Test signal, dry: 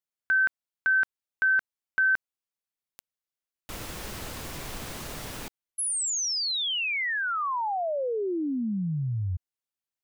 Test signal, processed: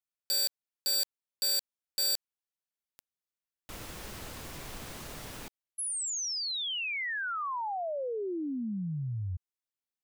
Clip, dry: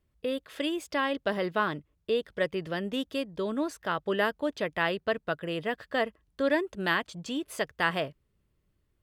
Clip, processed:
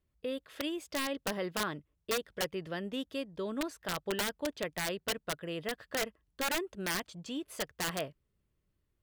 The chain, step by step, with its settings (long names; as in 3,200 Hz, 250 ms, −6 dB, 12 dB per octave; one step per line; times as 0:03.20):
wrap-around overflow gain 20 dB
level −5.5 dB